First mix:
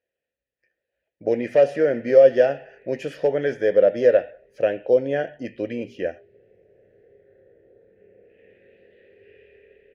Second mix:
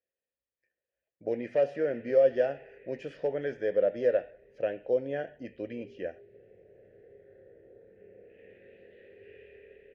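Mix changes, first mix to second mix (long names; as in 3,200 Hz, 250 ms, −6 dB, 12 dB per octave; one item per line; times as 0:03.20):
speech −9.5 dB
master: add high-frequency loss of the air 88 metres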